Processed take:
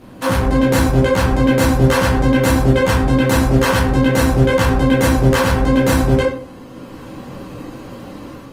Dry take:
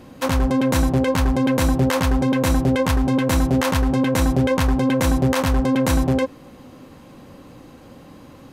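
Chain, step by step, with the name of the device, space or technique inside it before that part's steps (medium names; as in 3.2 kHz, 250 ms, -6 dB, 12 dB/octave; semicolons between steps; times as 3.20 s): speakerphone in a meeting room (reverberation RT60 0.50 s, pre-delay 10 ms, DRR -6 dB; level rider gain up to 5 dB; trim -1 dB; Opus 24 kbps 48 kHz)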